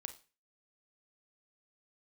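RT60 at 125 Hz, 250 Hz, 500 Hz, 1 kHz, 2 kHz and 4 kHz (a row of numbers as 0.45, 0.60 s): 0.40, 0.35, 0.35, 0.35, 0.35, 0.35 s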